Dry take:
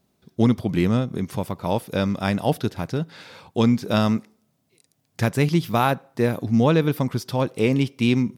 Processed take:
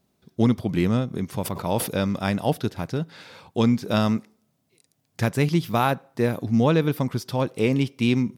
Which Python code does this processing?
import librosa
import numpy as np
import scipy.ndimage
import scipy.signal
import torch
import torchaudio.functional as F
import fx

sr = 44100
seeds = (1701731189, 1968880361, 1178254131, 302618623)

y = fx.sustainer(x, sr, db_per_s=87.0, at=(1.44, 2.16), fade=0.02)
y = y * librosa.db_to_amplitude(-1.5)